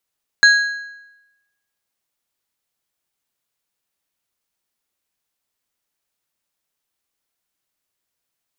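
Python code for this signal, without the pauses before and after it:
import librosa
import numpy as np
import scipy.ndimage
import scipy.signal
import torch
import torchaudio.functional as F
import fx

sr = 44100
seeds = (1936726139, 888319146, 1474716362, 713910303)

y = fx.strike_metal(sr, length_s=1.55, level_db=-5.5, body='plate', hz=1650.0, decay_s=0.97, tilt_db=7.0, modes=3)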